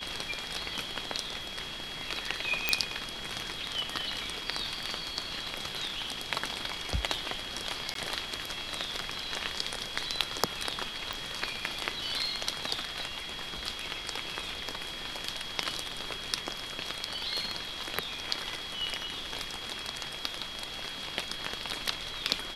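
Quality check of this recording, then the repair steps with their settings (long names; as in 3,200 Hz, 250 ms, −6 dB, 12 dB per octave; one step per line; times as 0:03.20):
whistle 3,300 Hz −41 dBFS
0:02.69: click −8 dBFS
0:07.94–0:07.95: drop-out 13 ms
0:11.13: click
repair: click removal
notch filter 3,300 Hz, Q 30
repair the gap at 0:07.94, 13 ms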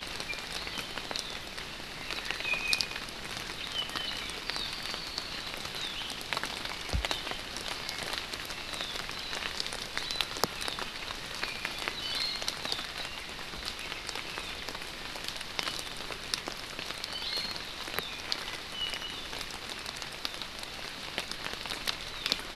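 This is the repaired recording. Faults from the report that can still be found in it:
none of them is left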